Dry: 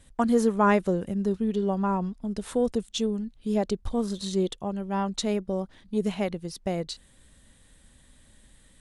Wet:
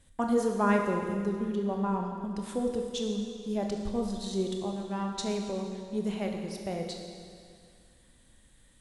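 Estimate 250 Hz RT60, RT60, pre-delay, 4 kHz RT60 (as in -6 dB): 2.2 s, 2.2 s, 23 ms, 2.2 s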